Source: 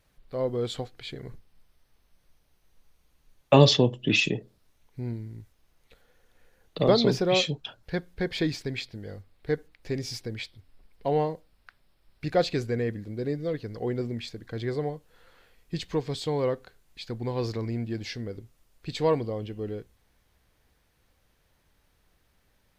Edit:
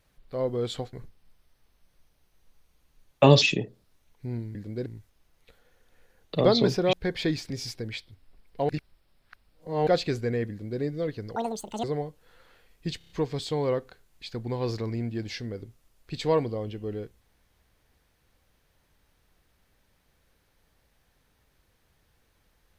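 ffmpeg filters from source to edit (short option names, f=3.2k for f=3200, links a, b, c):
-filter_complex "[0:a]asplit=15[a][b][c][d][e][f][g][h][i][j][k][l][m][n][o];[a]atrim=end=0.932[p];[b]atrim=start=1.228:end=3.722[q];[c]atrim=start=4.158:end=5.292[r];[d]atrim=start=12.958:end=13.272[s];[e]atrim=start=5.288:end=7.362[t];[f]atrim=start=8.088:end=8.662[u];[g]atrim=start=9.958:end=11.152[v];[h]atrim=start=11.148:end=12.332,asetpts=PTS-STARTPTS,areverse[w];[i]atrim=start=12.328:end=13.824[x];[j]atrim=start=13.82:end=14.71,asetpts=PTS-STARTPTS,asetrate=82467,aresample=44100[y];[k]atrim=start=14.706:end=15.882[z];[l]atrim=start=15.848:end=15.882[aa];[m]atrim=start=15.848:end=15.882[ab];[n]atrim=start=15.848:end=15.882[ac];[o]atrim=start=15.848[ad];[p][q]acrossfade=d=0.004:c1=hsin:c2=hsin[ae];[ae][r]acrossfade=d=0.004:c1=hsin:c2=hsin[af];[af][s]acrossfade=d=0.004:c1=hsin:c2=hsin[ag];[ag][t]acrossfade=d=0.004:c1=hsin:c2=hsin[ah];[ah][u]acrossfade=d=0.004:c1=hsin:c2=hsin[ai];[ai][v]acrossfade=d=0.004:c1=hsin:c2=hsin[aj];[aj][w]acrossfade=d=0.004:c1=hsin:c2=hsin[ak];[ak][x]acrossfade=d=0.004:c1=hsin:c2=hsin[al];[al][y]acrossfade=d=0.004:c1=hsin:c2=hsin[am];[am][z]acrossfade=d=0.004:c1=hsin:c2=hsin[an];[an][aa]acrossfade=d=0.004:c1=hsin:c2=hsin[ao];[ao][ab]acrossfade=d=0.004:c1=hsin:c2=hsin[ap];[ap][ac]acrossfade=d=0.004:c1=hsin:c2=hsin[aq];[aq][ad]acrossfade=d=0.004:c1=hsin:c2=hsin"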